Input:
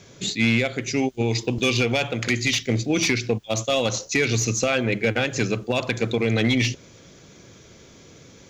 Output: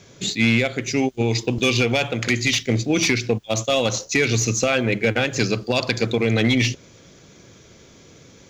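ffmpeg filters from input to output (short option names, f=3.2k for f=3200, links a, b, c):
-filter_complex "[0:a]asettb=1/sr,asplit=3[a][b][c];[a]atrim=end=5.394[d];[b]atrim=start=5.39:end=6.06,asetpts=PTS-STARTPTS,afade=t=in:d=0.004:c=qsin,afade=t=out:st=0.666:d=0.004:c=qsin,equalizer=f=4.7k:w=4.4:g=14.5[e];[c]atrim=start=6.056[f];[d][e]acrossfade=d=0.004:c1=hsin:c2=qsin[g];[g][f]acrossfade=d=0.004:c1=qsin:c2=hsin,asplit=2[h][i];[i]aeval=exprs='sgn(val(0))*max(abs(val(0))-0.00841,0)':c=same,volume=-10.5dB[j];[h][j]amix=inputs=2:normalize=0"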